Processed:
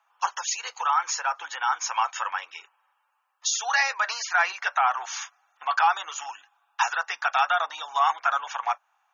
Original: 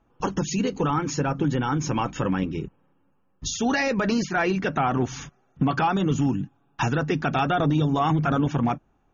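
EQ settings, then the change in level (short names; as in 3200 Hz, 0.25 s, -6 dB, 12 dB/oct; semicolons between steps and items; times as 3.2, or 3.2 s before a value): dynamic EQ 2900 Hz, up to -4 dB, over -41 dBFS, Q 1.3; steep high-pass 830 Hz 36 dB/oct; +5.5 dB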